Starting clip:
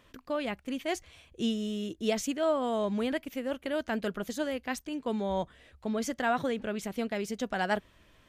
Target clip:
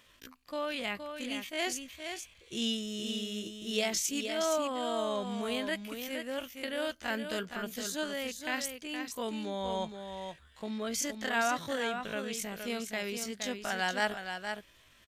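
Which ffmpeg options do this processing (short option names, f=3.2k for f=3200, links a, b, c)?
-af "tiltshelf=f=1.5k:g=-6.5,atempo=0.55,aecho=1:1:468:0.447"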